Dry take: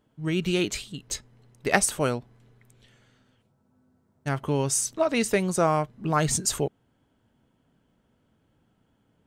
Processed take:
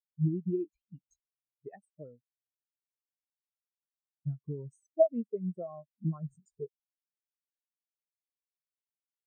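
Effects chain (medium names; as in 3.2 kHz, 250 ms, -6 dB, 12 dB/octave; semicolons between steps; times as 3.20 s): compression 4:1, threshold -34 dBFS, peak gain reduction 16 dB; spectral contrast expander 4:1; trim +5.5 dB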